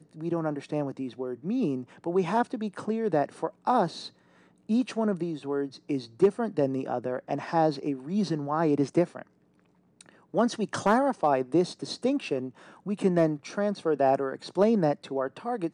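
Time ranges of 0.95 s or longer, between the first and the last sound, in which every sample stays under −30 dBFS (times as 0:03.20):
0:09.22–0:10.34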